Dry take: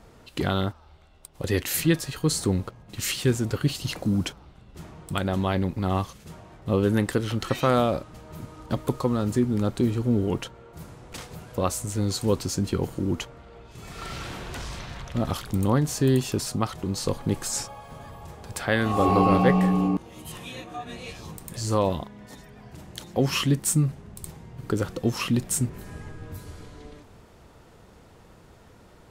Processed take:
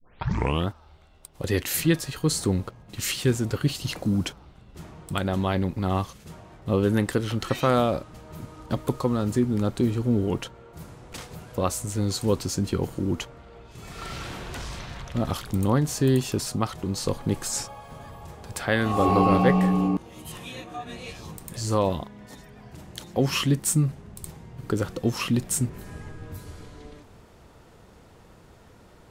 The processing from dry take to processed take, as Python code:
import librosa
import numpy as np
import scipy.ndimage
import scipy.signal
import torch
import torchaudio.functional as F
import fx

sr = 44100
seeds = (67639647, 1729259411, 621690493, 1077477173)

y = fx.tape_start_head(x, sr, length_s=0.68)